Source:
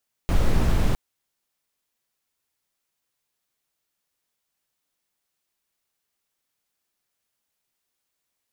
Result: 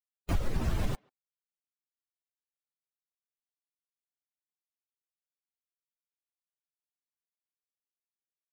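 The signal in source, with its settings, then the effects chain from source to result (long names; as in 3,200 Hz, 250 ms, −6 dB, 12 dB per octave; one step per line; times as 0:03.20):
noise brown, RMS −18 dBFS 0.66 s
spectral dynamics exaggerated over time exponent 2
downward compressor, threshold −24 dBFS
far-end echo of a speakerphone 140 ms, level −28 dB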